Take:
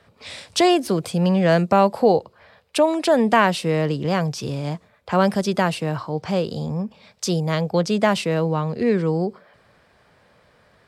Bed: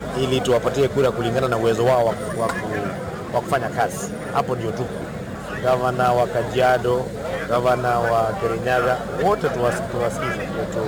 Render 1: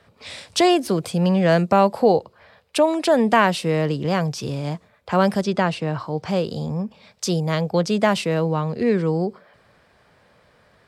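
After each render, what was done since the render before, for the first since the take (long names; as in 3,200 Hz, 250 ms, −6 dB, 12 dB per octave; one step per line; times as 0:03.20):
0:05.41–0:06.00: high-frequency loss of the air 69 metres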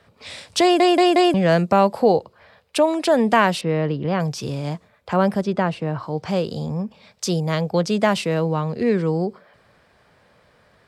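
0:00.62: stutter in place 0.18 s, 4 plays
0:03.61–0:04.20: high-frequency loss of the air 240 metres
0:05.13–0:06.03: parametric band 6,300 Hz −8 dB 2.7 octaves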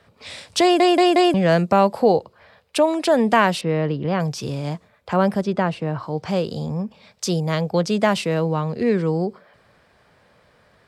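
no processing that can be heard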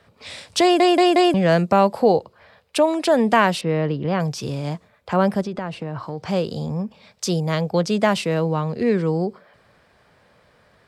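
0:05.44–0:06.27: downward compressor, threshold −23 dBFS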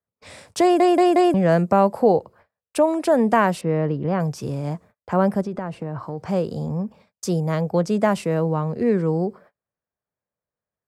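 noise gate −45 dBFS, range −34 dB
parametric band 3,600 Hz −12 dB 1.5 octaves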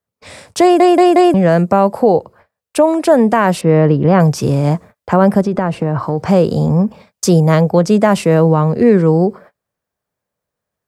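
speech leveller within 3 dB 0.5 s
boost into a limiter +10 dB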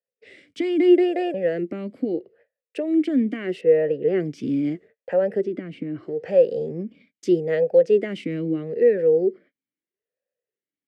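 formant filter swept between two vowels e-i 0.78 Hz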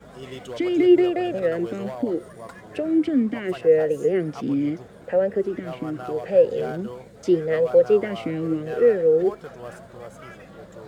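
mix in bed −17.5 dB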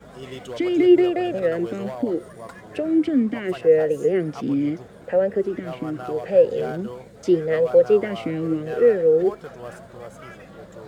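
level +1 dB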